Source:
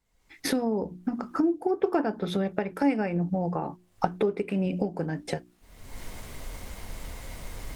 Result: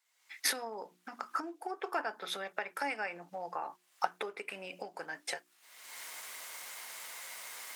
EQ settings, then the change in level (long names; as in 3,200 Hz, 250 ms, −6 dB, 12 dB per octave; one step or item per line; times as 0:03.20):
high-pass filter 1,300 Hz 12 dB per octave
dynamic equaliser 3,300 Hz, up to −4 dB, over −52 dBFS, Q 0.72
+4.0 dB